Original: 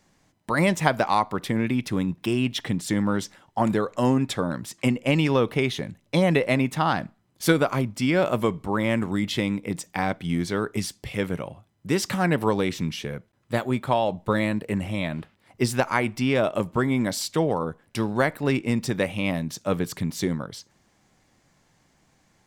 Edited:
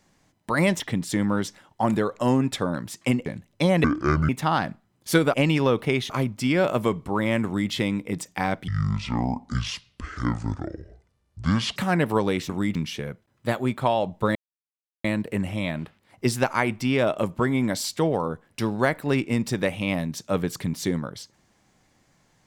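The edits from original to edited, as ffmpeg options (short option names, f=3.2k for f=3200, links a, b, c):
-filter_complex "[0:a]asplit=12[a][b][c][d][e][f][g][h][i][j][k][l];[a]atrim=end=0.802[m];[b]atrim=start=2.568:end=5.032[n];[c]atrim=start=5.788:end=6.374[o];[d]atrim=start=6.37:end=6.63,asetpts=PTS-STARTPTS,asetrate=25578,aresample=44100[p];[e]atrim=start=6.626:end=7.682[q];[f]atrim=start=5.028:end=5.792[r];[g]atrim=start=7.678:end=10.264[s];[h]atrim=start=10.26:end=12.08,asetpts=PTS-STARTPTS,asetrate=26019,aresample=44100,atrim=end_sample=136037,asetpts=PTS-STARTPTS[t];[i]atrim=start=12.076:end=12.812[u];[j]atrim=start=9.028:end=9.292[v];[k]atrim=start=12.808:end=14.41,asetpts=PTS-STARTPTS,afade=t=out:st=1.598:d=0.004:c=hsin,apad=pad_dur=0.69[w];[l]atrim=start=14.41,asetpts=PTS-STARTPTS,afade=t=in:d=0.004:c=hsin[x];[m][n]acrossfade=d=0.004:c1=hsin:c2=hsin[y];[y][o]acrossfade=d=0.004:c1=hsin:c2=hsin[z];[z][p]acrossfade=d=0.004:c1=hsin:c2=hsin[aa];[aa][q]acrossfade=d=0.004:c1=hsin:c2=hsin[ab];[ab][r]acrossfade=d=0.004:c1=hsin:c2=hsin[ac];[ac][s]acrossfade=d=0.004:c1=hsin:c2=hsin[ad];[ad][t]acrossfade=d=0.004:c1=hsin:c2=hsin[ae];[ae][u]acrossfade=d=0.004:c1=hsin:c2=hsin[af];[af][v]acrossfade=d=0.004:c1=hsin:c2=hsin[ag];[w][x]concat=n=2:v=0:a=1[ah];[ag][ah]acrossfade=d=0.004:c1=hsin:c2=hsin"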